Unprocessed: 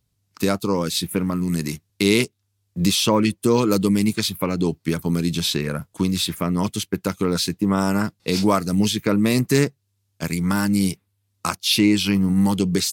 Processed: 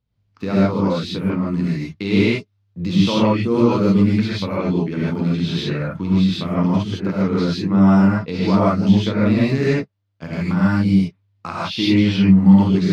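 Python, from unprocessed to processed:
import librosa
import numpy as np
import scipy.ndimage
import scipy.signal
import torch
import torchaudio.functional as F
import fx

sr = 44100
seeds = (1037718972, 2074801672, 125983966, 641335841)

y = fx.law_mismatch(x, sr, coded='A', at=(7.99, 10.59))
y = fx.air_absorb(y, sr, metres=240.0)
y = fx.rev_gated(y, sr, seeds[0], gate_ms=180, shape='rising', drr_db=-7.5)
y = F.gain(torch.from_numpy(y), -5.0).numpy()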